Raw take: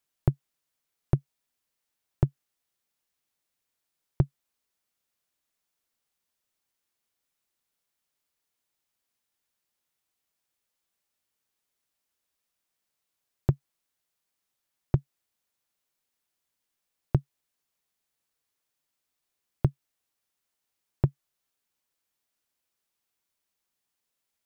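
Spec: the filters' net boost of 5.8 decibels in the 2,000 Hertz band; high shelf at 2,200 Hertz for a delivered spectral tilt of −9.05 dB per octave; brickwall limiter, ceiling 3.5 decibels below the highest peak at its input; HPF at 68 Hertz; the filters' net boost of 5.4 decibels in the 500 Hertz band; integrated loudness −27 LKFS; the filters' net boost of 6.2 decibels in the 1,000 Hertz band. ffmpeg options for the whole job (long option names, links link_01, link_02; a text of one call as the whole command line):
ffmpeg -i in.wav -af "highpass=68,equalizer=frequency=500:width_type=o:gain=6.5,equalizer=frequency=1000:width_type=o:gain=5,equalizer=frequency=2000:width_type=o:gain=8,highshelf=frequency=2200:gain=-5.5,volume=6.5dB,alimiter=limit=-4dB:level=0:latency=1" out.wav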